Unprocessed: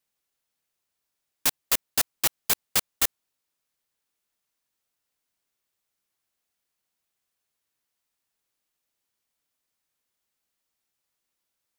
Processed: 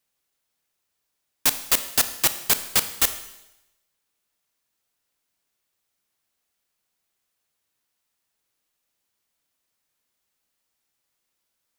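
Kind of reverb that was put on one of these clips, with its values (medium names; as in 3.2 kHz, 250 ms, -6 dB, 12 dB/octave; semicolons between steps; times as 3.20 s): Schroeder reverb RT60 0.92 s, combs from 26 ms, DRR 10.5 dB; trim +3.5 dB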